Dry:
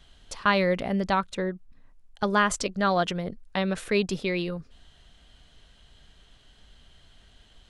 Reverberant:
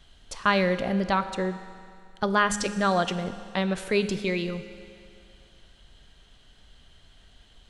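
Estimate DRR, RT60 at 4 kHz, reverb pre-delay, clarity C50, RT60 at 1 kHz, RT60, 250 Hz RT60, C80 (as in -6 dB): 10.5 dB, 2.3 s, 9 ms, 11.5 dB, 2.3 s, 2.3 s, 2.3 s, 12.5 dB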